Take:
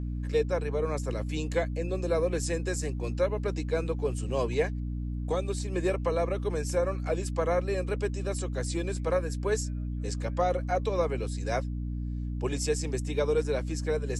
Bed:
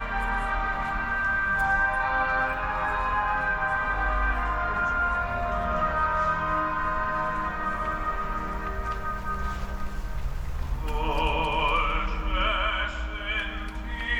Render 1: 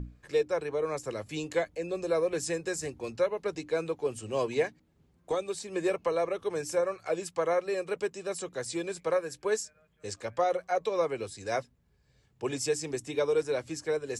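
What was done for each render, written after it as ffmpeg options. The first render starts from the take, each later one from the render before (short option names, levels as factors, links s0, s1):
-af "bandreject=f=60:t=h:w=6,bandreject=f=120:t=h:w=6,bandreject=f=180:t=h:w=6,bandreject=f=240:t=h:w=6,bandreject=f=300:t=h:w=6"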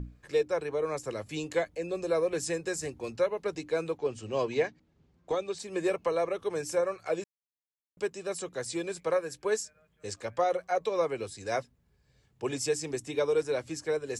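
-filter_complex "[0:a]asplit=3[s0][s1][s2];[s0]afade=t=out:st=3.97:d=0.02[s3];[s1]lowpass=f=6700:w=0.5412,lowpass=f=6700:w=1.3066,afade=t=in:st=3.97:d=0.02,afade=t=out:st=5.58:d=0.02[s4];[s2]afade=t=in:st=5.58:d=0.02[s5];[s3][s4][s5]amix=inputs=3:normalize=0,asplit=3[s6][s7][s8];[s6]atrim=end=7.24,asetpts=PTS-STARTPTS,afade=t=out:st=7.236:d=0.004:c=hsin[s9];[s7]atrim=start=7.24:end=7.97,asetpts=PTS-STARTPTS,volume=0[s10];[s8]atrim=start=7.97,asetpts=PTS-STARTPTS,afade=t=in:d=0.004:c=hsin[s11];[s9][s10][s11]concat=n=3:v=0:a=1"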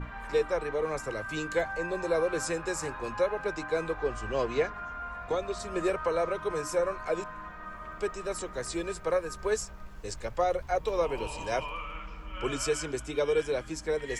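-filter_complex "[1:a]volume=0.211[s0];[0:a][s0]amix=inputs=2:normalize=0"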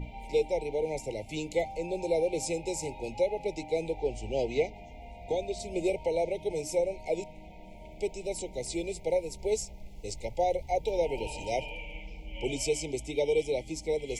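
-af "afftfilt=real='re*(1-between(b*sr/4096,930,2000))':imag='im*(1-between(b*sr/4096,930,2000))':win_size=4096:overlap=0.75"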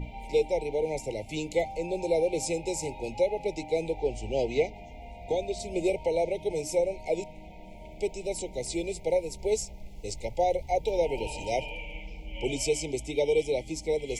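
-af "volume=1.26"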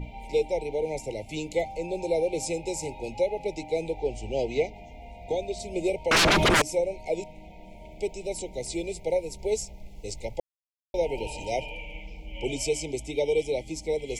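-filter_complex "[0:a]asettb=1/sr,asplit=3[s0][s1][s2];[s0]atrim=end=6.114[s3];[s1]atrim=start=6.11:end=6.62,asetpts=PTS-STARTPTS,afade=t=in:d=0.004:c=qsin,afade=t=out:st=0.506:d=0.004:c=qsin,aeval=exprs='0.15*sin(PI/2*8.91*val(0)/0.15)':c=same[s4];[s2]atrim=start=6.616[s5];[s3][s4]acrossfade=d=0.004:c1=hsin:c2=qsin[s6];[s6][s5]acrossfade=d=0.004:c1=qsin:c2=hsin,asplit=3[s7][s8][s9];[s7]atrim=end=10.4,asetpts=PTS-STARTPTS,afade=t=out:st=10.396:d=0.004:c=hsin[s10];[s8]atrim=start=10.4:end=10.94,asetpts=PTS-STARTPTS,volume=0[s11];[s9]atrim=start=10.94,asetpts=PTS-STARTPTS,afade=t=in:d=0.004:c=hsin[s12];[s10][s11][s12]concat=n=3:v=0:a=1"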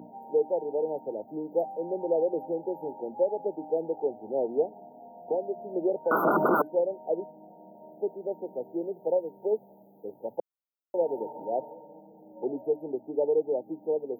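-af "highpass=f=210:w=0.5412,highpass=f=210:w=1.3066,afftfilt=real='re*(1-between(b*sr/4096,1500,12000))':imag='im*(1-between(b*sr/4096,1500,12000))':win_size=4096:overlap=0.75"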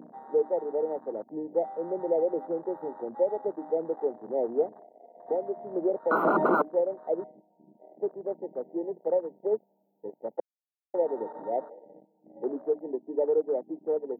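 -af "highpass=f=160:w=0.5412,highpass=f=160:w=1.3066,afwtdn=0.0112"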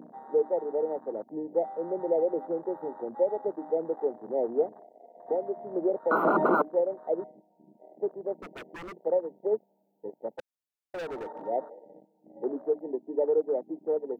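-filter_complex "[0:a]asettb=1/sr,asplit=3[s0][s1][s2];[s0]atrim=end=8.344[s3];[s1]atrim=start=8.34:end=8.96,asetpts=PTS-STARTPTS,afade=t=in:d=0.004:c=qsin,afade=t=out:st=0.616:d=0.004:c=qsin,aeval=exprs='0.015*(abs(mod(val(0)/0.015+3,4)-2)-1)':c=same[s4];[s2]atrim=start=8.956[s5];[s3][s4]acrossfade=d=0.004:c1=hsin:c2=qsin[s6];[s6][s5]acrossfade=d=0.004:c1=qsin:c2=hsin,asplit=3[s7][s8][s9];[s7]afade=t=out:st=10.34:d=0.02[s10];[s8]asoftclip=type=hard:threshold=0.0211,afade=t=in:st=10.34:d=0.02,afade=t=out:st=11.45:d=0.02[s11];[s9]afade=t=in:st=11.45:d=0.02[s12];[s10][s11][s12]amix=inputs=3:normalize=0"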